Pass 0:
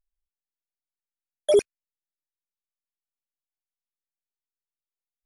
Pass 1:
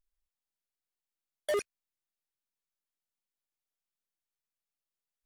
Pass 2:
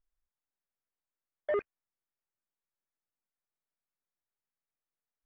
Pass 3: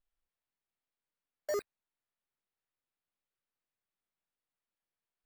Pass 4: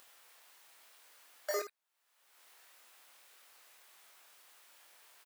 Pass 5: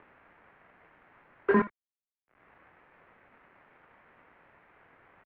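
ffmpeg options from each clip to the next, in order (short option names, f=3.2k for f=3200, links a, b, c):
-filter_complex "[0:a]asplit=2[a][b];[b]alimiter=limit=-20.5dB:level=0:latency=1:release=100,volume=2.5dB[c];[a][c]amix=inputs=2:normalize=0,volume=20dB,asoftclip=hard,volume=-20dB,volume=-7.5dB"
-af "lowpass=f=2k:w=0.5412,lowpass=f=2k:w=1.3066"
-af "acrusher=samples=7:mix=1:aa=0.000001,volume=-3.5dB"
-af "highpass=630,acompressor=mode=upward:threshold=-44dB:ratio=2.5,aecho=1:1:24|77:0.668|0.316,volume=3dB"
-af "acontrast=26,acrusher=bits=6:dc=4:mix=0:aa=0.000001,highpass=f=240:t=q:w=0.5412,highpass=f=240:t=q:w=1.307,lowpass=f=2.3k:t=q:w=0.5176,lowpass=f=2.3k:t=q:w=0.7071,lowpass=f=2.3k:t=q:w=1.932,afreqshift=-200,volume=7.5dB"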